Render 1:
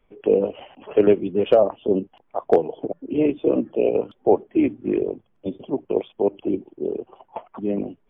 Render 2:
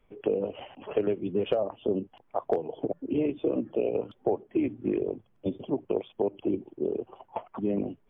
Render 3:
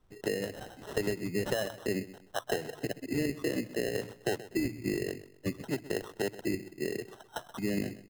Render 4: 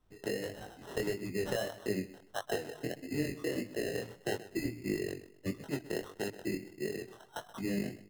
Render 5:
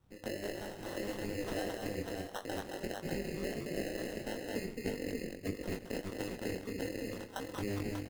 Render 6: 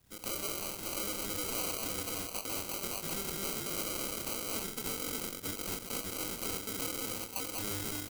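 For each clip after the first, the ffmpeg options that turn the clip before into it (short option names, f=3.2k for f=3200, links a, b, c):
-af "equalizer=f=110:t=o:w=0.77:g=5,acompressor=threshold=-22dB:ratio=6,volume=-1.5dB"
-af "equalizer=f=125:t=o:w=1:g=4,equalizer=f=250:t=o:w=1:g=-4,equalizer=f=500:t=o:w=1:g=-5,equalizer=f=1k:t=o:w=1:g=-5,equalizer=f=2k:t=o:w=1:g=8,aecho=1:1:128|256|384:0.158|0.0491|0.0152,acrusher=samples=19:mix=1:aa=0.000001"
-af "flanger=delay=19:depth=5.9:speed=1.6"
-filter_complex "[0:a]alimiter=level_in=7.5dB:limit=-24dB:level=0:latency=1:release=307,volume=-7.5dB,asplit=2[a][b];[b]aecho=0:1:218|592:0.668|0.596[c];[a][c]amix=inputs=2:normalize=0,aeval=exprs='val(0)*sin(2*PI*100*n/s)':c=same,volume=4.5dB"
-af "acrusher=samples=25:mix=1:aa=0.000001,asoftclip=type=tanh:threshold=-37dB,crystalizer=i=6:c=0"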